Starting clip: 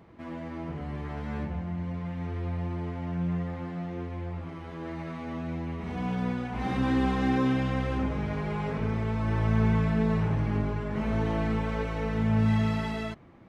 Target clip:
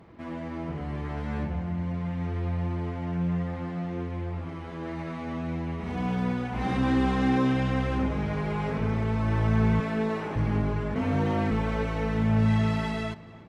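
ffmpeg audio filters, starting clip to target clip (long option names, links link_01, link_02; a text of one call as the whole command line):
ffmpeg -i in.wav -filter_complex "[0:a]asettb=1/sr,asplit=3[link_01][link_02][link_03];[link_01]atrim=end=9.804[link_04];[link_02]atrim=start=9.8:end=10.36,asetpts=PTS-STARTPTS,afade=type=in:duration=0.004:curve=qsin,afade=type=out:start_time=0.556:duration=0.004:curve=qsin,highpass=frequency=230:width=0.5412,highpass=frequency=230:width=1.3066[link_05];[link_03]atrim=start=10.356[link_06];[link_04][link_05]acrossfade=duration=0.004:curve1=hsin:curve2=qsin[link_07];[link_07][link_06]acrossfade=duration=0.004:curve1=qsin:curve2=hsin,asplit=3[link_08][link_09][link_10];[link_08]afade=type=out:start_time=10.94:duration=0.02[link_11];[link_09]afreqshift=39,afade=type=in:start_time=10.94:duration=0.02,afade=type=out:start_time=11.5:duration=0.02[link_12];[link_10]afade=type=in:start_time=11.5:duration=0.02[link_13];[link_11][link_12][link_13]amix=inputs=3:normalize=0,asplit=2[link_14][link_15];[link_15]asoftclip=type=hard:threshold=-25.5dB,volume=-10.5dB[link_16];[link_14][link_16]amix=inputs=2:normalize=0,asplit=2[link_17][link_18];[link_18]adelay=286,lowpass=frequency=4800:poles=1,volume=-18.5dB,asplit=2[link_19][link_20];[link_20]adelay=286,lowpass=frequency=4800:poles=1,volume=0.42,asplit=2[link_21][link_22];[link_22]adelay=286,lowpass=frequency=4800:poles=1,volume=0.42[link_23];[link_17][link_19][link_21][link_23]amix=inputs=4:normalize=0" -ar 44100 -c:a sbc -b:a 128k out.sbc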